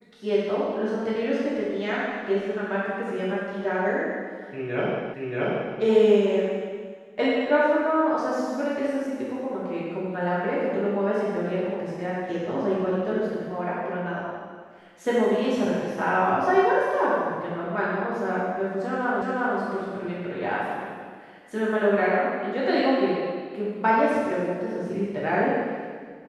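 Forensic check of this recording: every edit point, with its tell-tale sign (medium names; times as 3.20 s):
5.14 s: repeat of the last 0.63 s
19.22 s: repeat of the last 0.36 s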